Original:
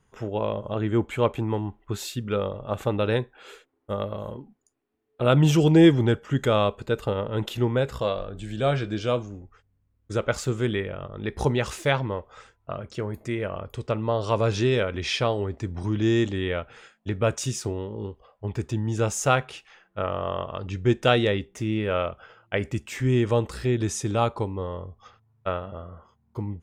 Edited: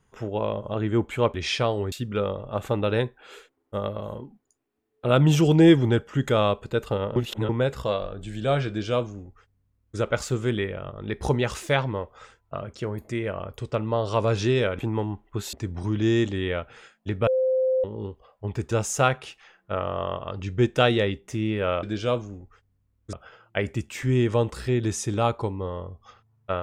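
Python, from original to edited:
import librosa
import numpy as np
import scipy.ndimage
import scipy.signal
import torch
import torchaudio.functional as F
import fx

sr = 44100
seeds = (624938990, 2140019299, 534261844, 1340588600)

y = fx.edit(x, sr, fx.swap(start_s=1.34, length_s=0.74, other_s=14.95, other_length_s=0.58),
    fx.reverse_span(start_s=7.32, length_s=0.33),
    fx.duplicate(start_s=8.84, length_s=1.3, to_s=22.1),
    fx.bleep(start_s=17.27, length_s=0.57, hz=519.0, db=-19.0),
    fx.cut(start_s=18.71, length_s=0.27), tone=tone)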